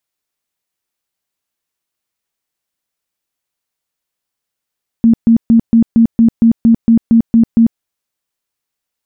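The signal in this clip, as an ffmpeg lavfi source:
ffmpeg -f lavfi -i "aevalsrc='0.631*sin(2*PI*229*mod(t,0.23))*lt(mod(t,0.23),22/229)':duration=2.76:sample_rate=44100" out.wav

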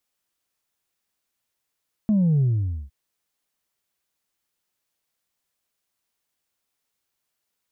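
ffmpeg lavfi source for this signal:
ffmpeg -f lavfi -i "aevalsrc='0.15*clip((0.81-t)/0.49,0,1)*tanh(1.12*sin(2*PI*220*0.81/log(65/220)*(exp(log(65/220)*t/0.81)-1)))/tanh(1.12)':duration=0.81:sample_rate=44100" out.wav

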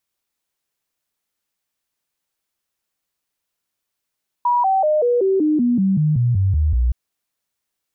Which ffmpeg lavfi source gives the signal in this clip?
ffmpeg -f lavfi -i "aevalsrc='0.211*clip(min(mod(t,0.19),0.19-mod(t,0.19))/0.005,0,1)*sin(2*PI*969*pow(2,-floor(t/0.19)/3)*mod(t,0.19))':duration=2.47:sample_rate=44100" out.wav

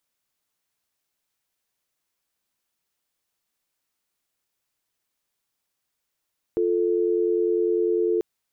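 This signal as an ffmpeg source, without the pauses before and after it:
ffmpeg -f lavfi -i "aevalsrc='0.0794*(sin(2*PI*350*t)+sin(2*PI*440*t))':duration=1.64:sample_rate=44100" out.wav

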